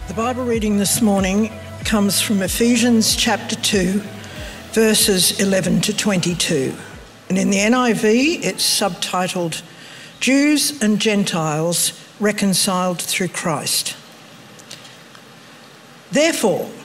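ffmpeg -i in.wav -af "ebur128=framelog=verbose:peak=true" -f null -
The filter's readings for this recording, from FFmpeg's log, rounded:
Integrated loudness:
  I:         -17.2 LUFS
  Threshold: -28.0 LUFS
Loudness range:
  LRA:         4.9 LU
  Threshold: -37.8 LUFS
  LRA low:   -21.4 LUFS
  LRA high:  -16.5 LUFS
True peak:
  Peak:       -3.6 dBFS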